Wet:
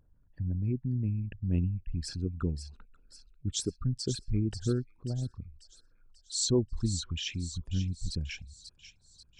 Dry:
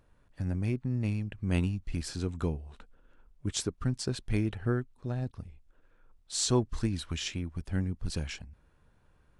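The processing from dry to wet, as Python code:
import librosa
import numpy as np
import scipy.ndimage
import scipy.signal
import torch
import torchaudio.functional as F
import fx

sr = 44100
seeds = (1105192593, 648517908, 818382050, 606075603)

p1 = fx.envelope_sharpen(x, sr, power=2.0)
y = p1 + fx.echo_wet_highpass(p1, sr, ms=539, feedback_pct=50, hz=3600.0, wet_db=-7, dry=0)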